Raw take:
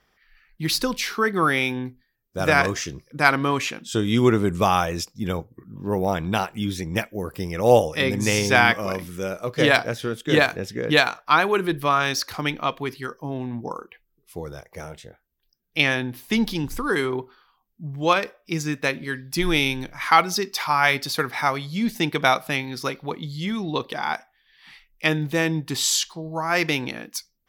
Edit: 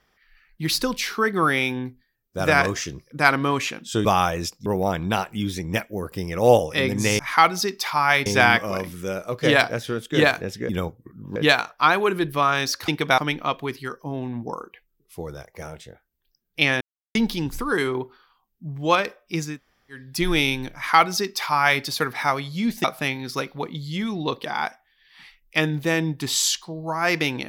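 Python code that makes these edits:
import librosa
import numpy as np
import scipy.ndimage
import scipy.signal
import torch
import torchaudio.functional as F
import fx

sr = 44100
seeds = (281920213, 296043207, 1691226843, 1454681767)

y = fx.edit(x, sr, fx.cut(start_s=4.05, length_s=0.55),
    fx.move(start_s=5.21, length_s=0.67, to_s=10.84),
    fx.silence(start_s=15.99, length_s=0.34),
    fx.room_tone_fill(start_s=18.69, length_s=0.49, crossfade_s=0.24),
    fx.duplicate(start_s=19.93, length_s=1.07, to_s=8.41),
    fx.move(start_s=22.02, length_s=0.3, to_s=12.36), tone=tone)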